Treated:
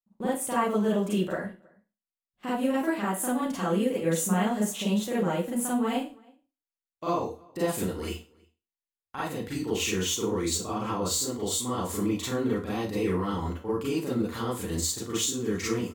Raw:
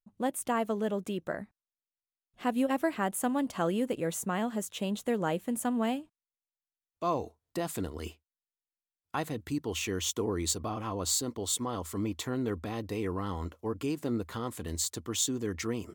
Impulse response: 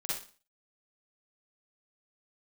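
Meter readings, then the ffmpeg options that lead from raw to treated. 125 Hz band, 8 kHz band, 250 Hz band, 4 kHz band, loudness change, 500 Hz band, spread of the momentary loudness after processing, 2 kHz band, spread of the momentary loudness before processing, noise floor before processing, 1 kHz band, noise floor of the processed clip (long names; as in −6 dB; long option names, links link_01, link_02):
+4.5 dB, +3.0 dB, +4.5 dB, +4.0 dB, +4.0 dB, +4.5 dB, 7 LU, +4.0 dB, 7 LU, below −85 dBFS, +3.0 dB, below −85 dBFS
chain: -filter_complex "[0:a]agate=range=-17dB:threshold=-45dB:ratio=16:detection=peak,bandreject=frequency=670:width=15,acontrast=89,alimiter=limit=-19dB:level=0:latency=1:release=486,asplit=2[link_01][link_02];[link_02]adelay=320.7,volume=-27dB,highshelf=frequency=4000:gain=-7.22[link_03];[link_01][link_03]amix=inputs=2:normalize=0[link_04];[1:a]atrim=start_sample=2205,asetrate=52920,aresample=44100[link_05];[link_04][link_05]afir=irnorm=-1:irlink=0"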